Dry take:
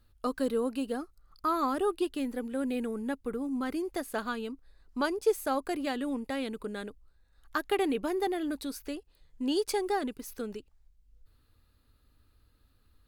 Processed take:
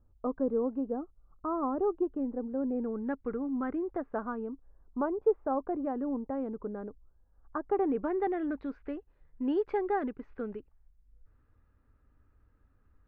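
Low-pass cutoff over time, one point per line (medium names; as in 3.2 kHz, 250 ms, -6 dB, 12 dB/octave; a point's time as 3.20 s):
low-pass 24 dB/octave
2.74 s 1 kHz
3.22 s 2 kHz
4.53 s 1.1 kHz
7.68 s 1.1 kHz
8.16 s 1.9 kHz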